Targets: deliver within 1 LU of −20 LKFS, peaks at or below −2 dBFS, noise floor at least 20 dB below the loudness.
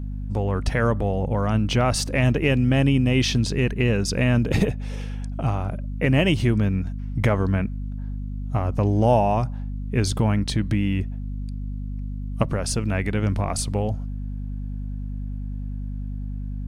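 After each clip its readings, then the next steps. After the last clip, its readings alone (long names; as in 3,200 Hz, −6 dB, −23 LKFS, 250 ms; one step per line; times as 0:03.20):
mains hum 50 Hz; hum harmonics up to 250 Hz; level of the hum −27 dBFS; integrated loudness −24.0 LKFS; sample peak −8.0 dBFS; target loudness −20.0 LKFS
→ hum removal 50 Hz, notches 5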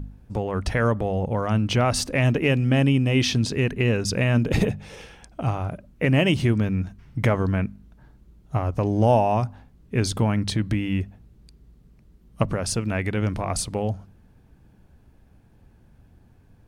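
mains hum none found; integrated loudness −23.5 LKFS; sample peak −8.0 dBFS; target loudness −20.0 LKFS
→ level +3.5 dB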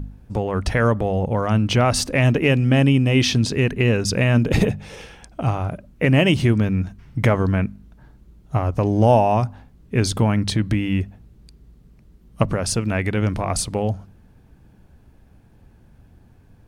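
integrated loudness −20.0 LKFS; sample peak −4.5 dBFS; background noise floor −52 dBFS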